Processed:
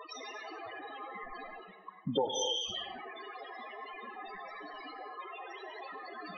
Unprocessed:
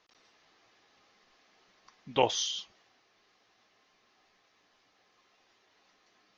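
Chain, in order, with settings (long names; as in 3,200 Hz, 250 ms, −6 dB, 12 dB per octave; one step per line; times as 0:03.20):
spectral peaks only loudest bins 8
reversed playback
upward compression, threshold −46 dBFS
reversed playback
reverb whose tail is shaped and stops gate 300 ms flat, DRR 9 dB
downward compressor 4 to 1, threshold −47 dBFS, peak gain reduction 20 dB
tape delay 101 ms, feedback 37%, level −11 dB, low-pass 1,200 Hz
level +15 dB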